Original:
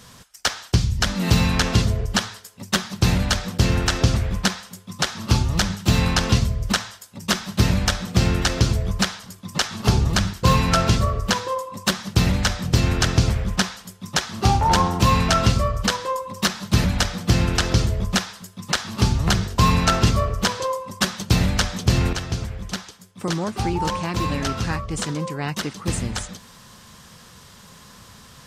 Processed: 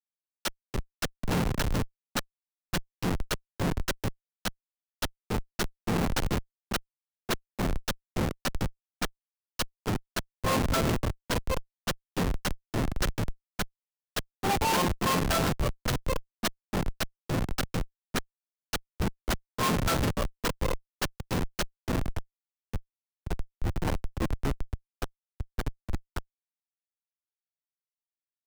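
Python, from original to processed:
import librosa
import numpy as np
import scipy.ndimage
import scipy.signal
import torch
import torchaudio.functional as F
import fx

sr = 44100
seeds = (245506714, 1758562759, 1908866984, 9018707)

y = scipy.signal.sosfilt(scipy.signal.butter(2, 280.0, 'highpass', fs=sr, output='sos'), x)
y = fx.schmitt(y, sr, flips_db=-19.0)
y = fx.band_widen(y, sr, depth_pct=100)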